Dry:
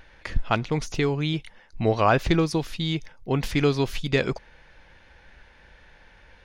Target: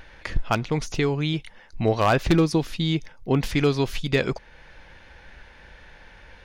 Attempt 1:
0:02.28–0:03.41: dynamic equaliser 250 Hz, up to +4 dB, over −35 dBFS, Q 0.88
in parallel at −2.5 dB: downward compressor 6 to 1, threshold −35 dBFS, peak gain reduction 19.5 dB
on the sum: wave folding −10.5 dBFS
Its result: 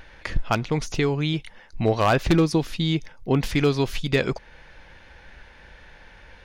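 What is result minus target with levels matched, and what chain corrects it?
downward compressor: peak gain reduction −5 dB
0:02.28–0:03.41: dynamic equaliser 250 Hz, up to +4 dB, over −35 dBFS, Q 0.88
in parallel at −2.5 dB: downward compressor 6 to 1, threshold −41 dBFS, peak gain reduction 24.5 dB
on the sum: wave folding −10.5 dBFS

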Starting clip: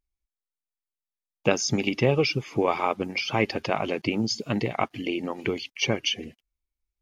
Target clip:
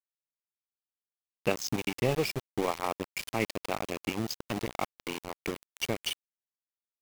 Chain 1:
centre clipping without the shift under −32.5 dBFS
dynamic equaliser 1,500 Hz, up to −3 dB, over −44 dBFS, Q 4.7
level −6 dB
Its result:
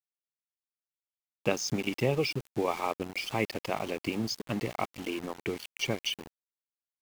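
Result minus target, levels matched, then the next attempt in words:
centre clipping without the shift: distortion −9 dB
centre clipping without the shift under −24 dBFS
dynamic equaliser 1,500 Hz, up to −3 dB, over −44 dBFS, Q 4.7
level −6 dB

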